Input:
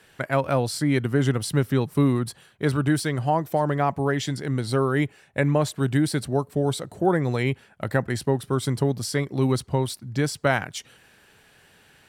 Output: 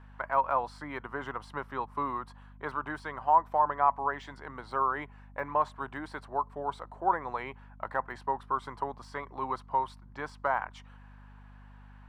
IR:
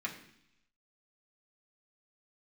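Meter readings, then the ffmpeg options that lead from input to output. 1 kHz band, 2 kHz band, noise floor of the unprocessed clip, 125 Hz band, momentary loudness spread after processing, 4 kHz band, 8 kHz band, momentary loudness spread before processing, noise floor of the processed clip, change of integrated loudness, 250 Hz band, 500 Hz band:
+1.5 dB, −7.5 dB, −57 dBFS, −25.0 dB, 15 LU, below −15 dB, below −25 dB, 5 LU, −52 dBFS, −8.0 dB, −20.0 dB, −12.0 dB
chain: -af "aemphasis=mode=reproduction:type=riaa,deesser=1,highpass=frequency=1000:width_type=q:width=4.5,highshelf=frequency=2200:gain=-10,aeval=exprs='val(0)+0.00501*(sin(2*PI*50*n/s)+sin(2*PI*2*50*n/s)/2+sin(2*PI*3*50*n/s)/3+sin(2*PI*4*50*n/s)/4+sin(2*PI*5*50*n/s)/5)':channel_layout=same,volume=-4.5dB"

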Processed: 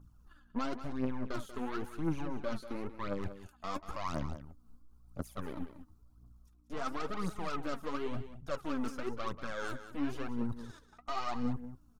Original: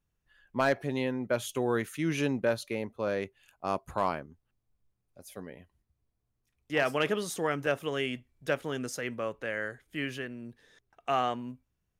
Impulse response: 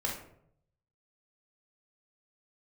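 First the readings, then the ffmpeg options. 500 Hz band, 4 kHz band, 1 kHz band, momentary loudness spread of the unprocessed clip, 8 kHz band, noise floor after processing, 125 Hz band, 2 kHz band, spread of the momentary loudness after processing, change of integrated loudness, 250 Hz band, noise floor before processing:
−10.5 dB, −9.5 dB, −6.0 dB, 14 LU, −11.5 dB, −63 dBFS, −3.5 dB, −11.5 dB, 9 LU, −7.5 dB, −2.5 dB, −80 dBFS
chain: -filter_complex "[0:a]acrossover=split=2800[link_01][link_02];[link_02]acompressor=threshold=-51dB:ratio=4:attack=1:release=60[link_03];[link_01][link_03]amix=inputs=2:normalize=0,firequalizer=gain_entry='entry(290,0);entry(460,-8);entry(1300,5);entry(1800,-19);entry(4400,-7)':delay=0.05:min_phase=1,alimiter=level_in=3dB:limit=-24dB:level=0:latency=1:release=144,volume=-3dB,areverse,acompressor=threshold=-52dB:ratio=5,areverse,aeval=exprs='val(0)+0.000141*(sin(2*PI*60*n/s)+sin(2*PI*2*60*n/s)/2+sin(2*PI*3*60*n/s)/3+sin(2*PI*4*60*n/s)/4+sin(2*PI*5*60*n/s)/5)':channel_layout=same,aeval=exprs='0.00891*(cos(1*acos(clip(val(0)/0.00891,-1,1)))-cos(1*PI/2))+0.00141*(cos(8*acos(clip(val(0)/0.00891,-1,1)))-cos(8*PI/2))':channel_layout=same,aphaser=in_gain=1:out_gain=1:delay=4.7:decay=0.62:speed=0.96:type=triangular,asplit=2[link_04][link_05];[link_05]aecho=0:1:188:0.251[link_06];[link_04][link_06]amix=inputs=2:normalize=0,volume=12dB"

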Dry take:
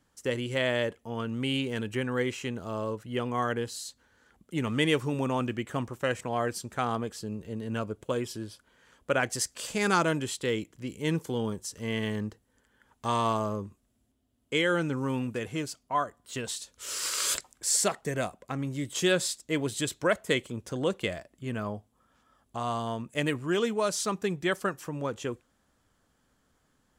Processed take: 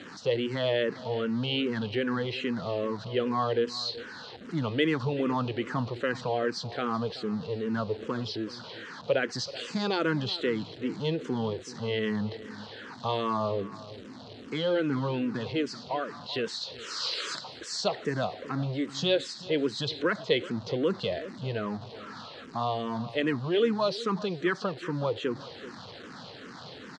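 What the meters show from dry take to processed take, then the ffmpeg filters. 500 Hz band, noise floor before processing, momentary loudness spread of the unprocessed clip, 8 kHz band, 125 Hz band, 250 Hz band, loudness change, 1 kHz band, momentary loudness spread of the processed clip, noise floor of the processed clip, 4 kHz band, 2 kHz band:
+2.0 dB, −72 dBFS, 11 LU, −13.0 dB, 0.0 dB, +1.0 dB, 0.0 dB, −1.0 dB, 14 LU, −46 dBFS, +2.0 dB, −2.0 dB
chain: -filter_complex "[0:a]aeval=exprs='val(0)+0.5*0.0119*sgn(val(0))':channel_layout=same,asplit=2[link_01][link_02];[link_02]alimiter=limit=-24dB:level=0:latency=1:release=75,volume=-0.5dB[link_03];[link_01][link_03]amix=inputs=2:normalize=0,highpass=frequency=110:width=0.5412,highpass=frequency=110:width=1.3066,equalizer=frequency=470:width_type=q:width=4:gain=4,equalizer=frequency=2300:width_type=q:width=4:gain=-4,equalizer=frequency=4200:width_type=q:width=4:gain=8,lowpass=frequency=4700:width=0.5412,lowpass=frequency=4700:width=1.3066,asplit=2[link_04][link_05];[link_05]adelay=379,volume=-16dB,highshelf=frequency=4000:gain=-8.53[link_06];[link_04][link_06]amix=inputs=2:normalize=0,asplit=2[link_07][link_08];[link_08]afreqshift=-2.5[link_09];[link_07][link_09]amix=inputs=2:normalize=1,volume=-2dB"

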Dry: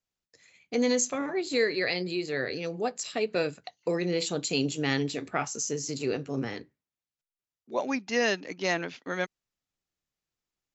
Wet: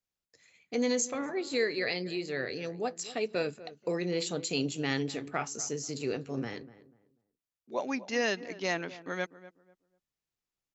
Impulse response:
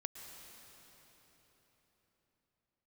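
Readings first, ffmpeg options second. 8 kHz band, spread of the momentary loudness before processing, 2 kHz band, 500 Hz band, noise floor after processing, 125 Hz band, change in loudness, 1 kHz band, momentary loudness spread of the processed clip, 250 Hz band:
can't be measured, 7 LU, −3.5 dB, −3.5 dB, below −85 dBFS, −3.5 dB, −3.5 dB, −3.5 dB, 7 LU, −3.5 dB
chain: -filter_complex "[0:a]asplit=2[link_01][link_02];[link_02]adelay=245,lowpass=frequency=1200:poles=1,volume=-15.5dB,asplit=2[link_03][link_04];[link_04]adelay=245,lowpass=frequency=1200:poles=1,volume=0.27,asplit=2[link_05][link_06];[link_06]adelay=245,lowpass=frequency=1200:poles=1,volume=0.27[link_07];[link_01][link_03][link_05][link_07]amix=inputs=4:normalize=0,volume=-3.5dB"

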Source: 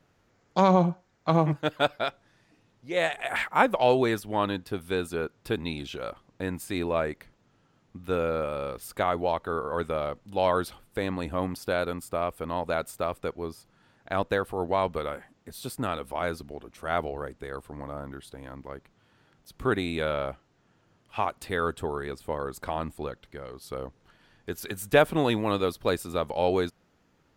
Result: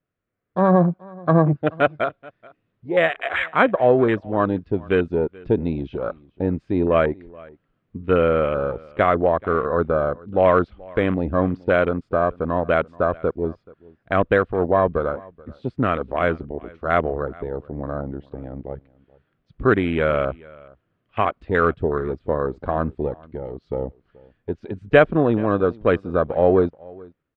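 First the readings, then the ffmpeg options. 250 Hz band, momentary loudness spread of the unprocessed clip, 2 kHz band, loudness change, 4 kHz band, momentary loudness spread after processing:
+8.5 dB, 15 LU, +7.0 dB, +7.5 dB, −2.5 dB, 15 LU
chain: -filter_complex "[0:a]acrossover=split=3500[link_01][link_02];[link_02]acrusher=bits=2:mix=0:aa=0.5[link_03];[link_01][link_03]amix=inputs=2:normalize=0,equalizer=frequency=870:width_type=o:width=0.22:gain=-13,dynaudnorm=framelen=250:gausssize=5:maxgain=10.5dB,afwtdn=0.0501,aecho=1:1:430:0.0668"

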